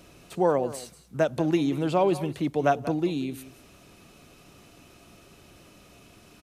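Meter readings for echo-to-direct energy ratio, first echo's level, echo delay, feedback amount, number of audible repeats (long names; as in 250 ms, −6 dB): −15.5 dB, −15.5 dB, 186 ms, repeats not evenly spaced, 1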